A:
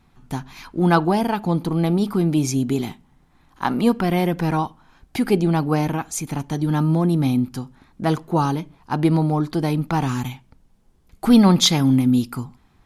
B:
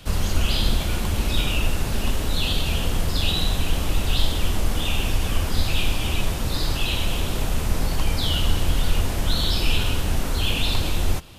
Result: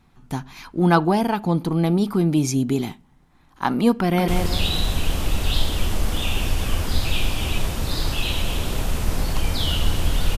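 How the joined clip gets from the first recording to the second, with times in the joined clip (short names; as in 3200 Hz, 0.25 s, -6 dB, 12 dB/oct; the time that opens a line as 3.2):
A
3.95–4.28 echo throw 0.18 s, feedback 35%, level -4.5 dB
4.28 switch to B from 2.91 s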